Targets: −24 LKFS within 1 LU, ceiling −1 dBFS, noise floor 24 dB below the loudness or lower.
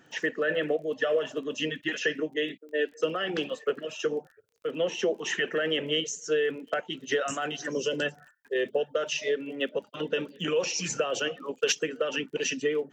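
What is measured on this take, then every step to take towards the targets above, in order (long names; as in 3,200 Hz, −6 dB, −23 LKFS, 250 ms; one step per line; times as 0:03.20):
crackle rate 26 per second; integrated loudness −29.5 LKFS; sample peak −13.0 dBFS; target loudness −24.0 LKFS
→ click removal
level +5.5 dB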